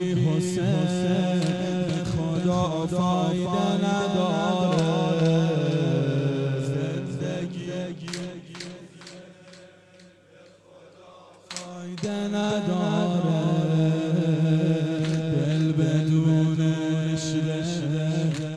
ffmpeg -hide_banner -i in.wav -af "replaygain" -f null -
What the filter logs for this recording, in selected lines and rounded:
track_gain = +7.1 dB
track_peak = 0.200